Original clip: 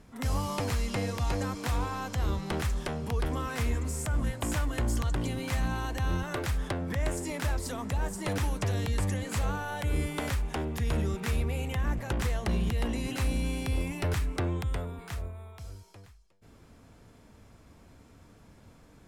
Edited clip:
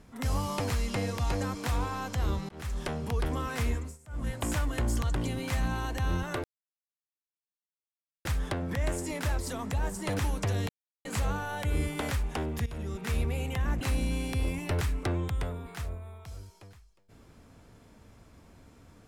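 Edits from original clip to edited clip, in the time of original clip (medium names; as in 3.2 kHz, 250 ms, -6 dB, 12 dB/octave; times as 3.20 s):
2.49–2.84 s: fade in
3.70–4.34 s: dip -23.5 dB, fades 0.28 s
6.44 s: insert silence 1.81 s
8.88–9.24 s: mute
10.85–11.37 s: fade in, from -15.5 dB
12.00–13.14 s: delete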